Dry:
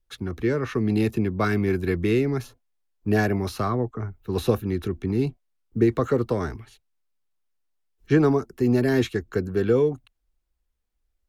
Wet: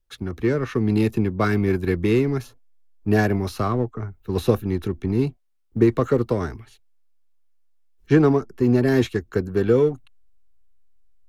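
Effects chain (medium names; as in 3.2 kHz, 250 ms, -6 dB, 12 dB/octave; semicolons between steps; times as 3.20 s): 8.19–8.87 s: treble shelf 6.6 kHz -7 dB; in parallel at -7 dB: hysteresis with a dead band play -19 dBFS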